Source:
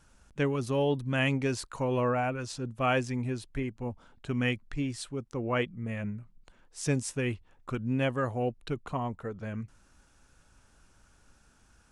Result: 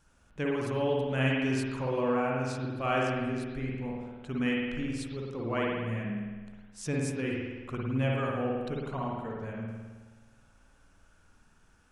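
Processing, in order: spring tank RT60 1.4 s, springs 53 ms, chirp 80 ms, DRR -3 dB; gain -5 dB

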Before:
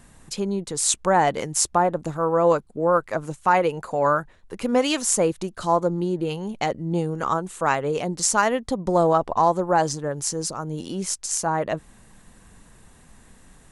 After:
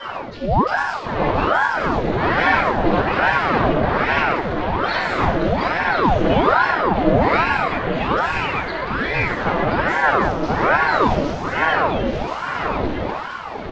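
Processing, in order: bin magnitudes rounded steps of 30 dB; 7.27–9.29 HPF 1100 Hz 12 dB/oct; auto swell 0.766 s; vocal rider within 3 dB; overdrive pedal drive 38 dB, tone 3600 Hz, clips at -9.5 dBFS; air absorption 310 m; feedback echo 1.032 s, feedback 31%, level -4.5 dB; reverb RT60 1.3 s, pre-delay 3 ms, DRR -9 dB; ring modulator with a swept carrier 710 Hz, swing 80%, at 1.2 Hz; gain -13.5 dB

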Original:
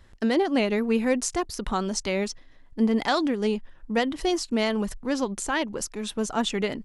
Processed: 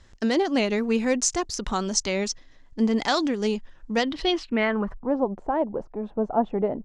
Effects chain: low-pass sweep 6600 Hz -> 730 Hz, 3.94–5.16

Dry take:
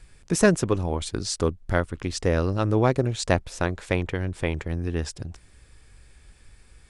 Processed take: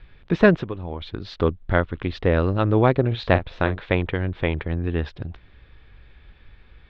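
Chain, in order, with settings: elliptic low-pass 3700 Hz, stop band 70 dB; 0.61–1.39 compressor 8:1, threshold -30 dBFS, peak gain reduction 12.5 dB; 3.07–3.8 doubler 43 ms -11.5 dB; gain +4 dB

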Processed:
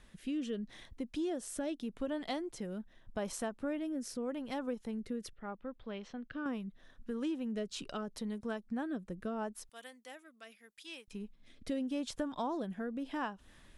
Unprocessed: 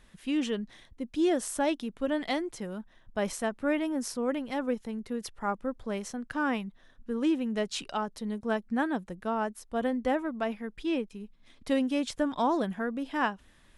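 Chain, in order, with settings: 9.69–11.08 differentiator; rotary speaker horn 0.8 Hz; dynamic EQ 2100 Hz, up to -5 dB, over -52 dBFS, Q 2.5; 5.33–6.46 ladder low-pass 4100 Hz, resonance 35%; compressor 2.5:1, threshold -40 dBFS, peak gain reduction 11.5 dB; gain +2 dB

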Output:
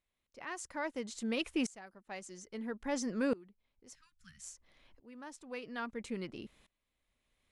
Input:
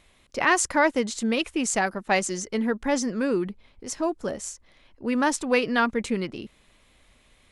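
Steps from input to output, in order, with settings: 3.95–4.42 inverse Chebyshev band-stop 340–740 Hz, stop band 60 dB; dB-ramp tremolo swelling 0.6 Hz, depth 24 dB; gain -5.5 dB

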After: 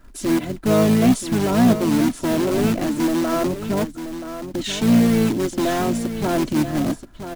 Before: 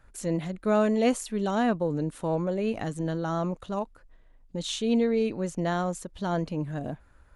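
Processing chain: bell 230 Hz +12.5 dB 1.4 oct; comb 3 ms, depth 78%; in parallel at -8.5 dB: wrapped overs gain 18 dB; on the sum: short-mantissa float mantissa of 2-bit; harmoniser -12 st -11 dB, -5 st -7 dB; soft clip -8.5 dBFS, distortion -15 dB; on a send: echo 0.979 s -10.5 dB

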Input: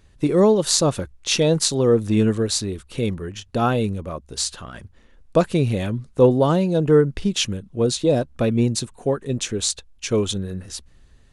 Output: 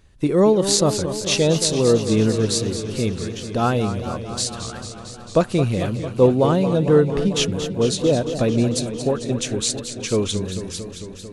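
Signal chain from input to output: warbling echo 0.224 s, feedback 76%, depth 128 cents, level -10.5 dB

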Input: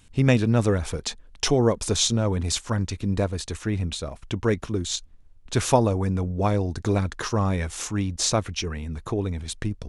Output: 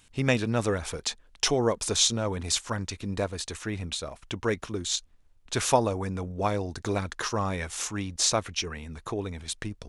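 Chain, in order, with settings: low shelf 380 Hz -9.5 dB

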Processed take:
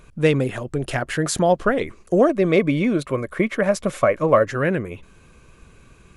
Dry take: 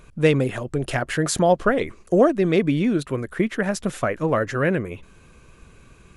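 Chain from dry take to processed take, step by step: 2.29–4.45 small resonant body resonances 580/1100/2200 Hz, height 10 dB, ringing for 25 ms

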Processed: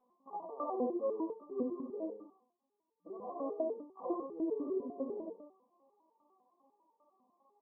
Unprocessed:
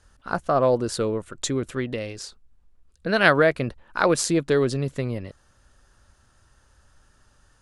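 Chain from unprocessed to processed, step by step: low shelf 310 Hz -11 dB; Schroeder reverb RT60 0.41 s, combs from 30 ms, DRR 11 dB; reverse; compressor 8:1, threshold -32 dBFS, peak gain reduction 19 dB; reverse; FFT band-pass 180–1200 Hz; on a send: echo 95 ms -3 dB; on the sum: stepped resonator 10 Hz 250–450 Hz; gain +12.5 dB

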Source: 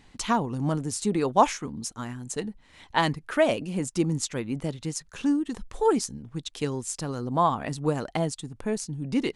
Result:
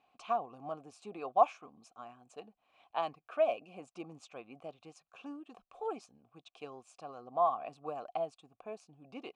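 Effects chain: vowel filter a

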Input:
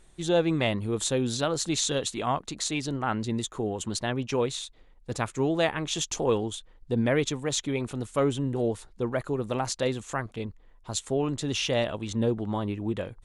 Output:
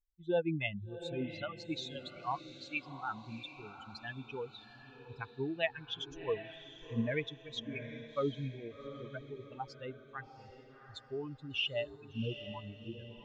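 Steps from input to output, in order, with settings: per-bin expansion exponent 3; ladder low-pass 3400 Hz, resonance 50%; on a send: diffused feedback echo 0.736 s, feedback 42%, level -11 dB; on the sum: gain +5 dB

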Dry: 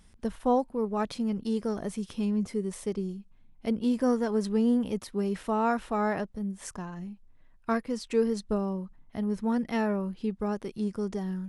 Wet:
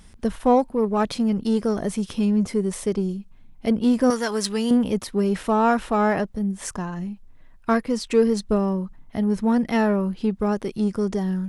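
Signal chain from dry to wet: 4.1–4.71 tilt shelf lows -9.5 dB; in parallel at -8.5 dB: soft clip -32 dBFS, distortion -7 dB; on the sum: gain +6.5 dB

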